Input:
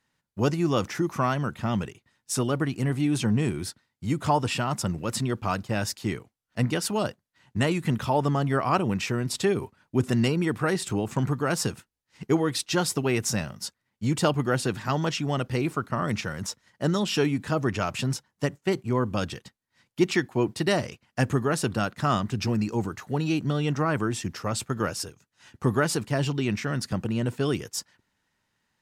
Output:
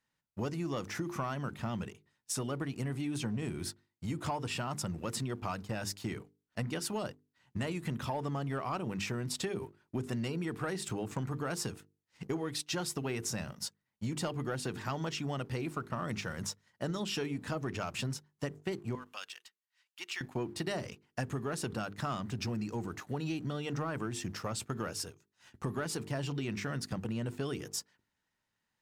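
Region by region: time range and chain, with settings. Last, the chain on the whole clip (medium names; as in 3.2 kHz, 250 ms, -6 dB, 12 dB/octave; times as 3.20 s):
18.95–20.21 s: high-pass 1.3 kHz + peaking EQ 2.8 kHz +6 dB 0.23 oct + compression 1.5:1, threshold -45 dBFS
whole clip: hum notches 50/100/150/200/250/300/350/400/450 Hz; waveshaping leveller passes 1; compression 5:1, threshold -26 dBFS; trim -7 dB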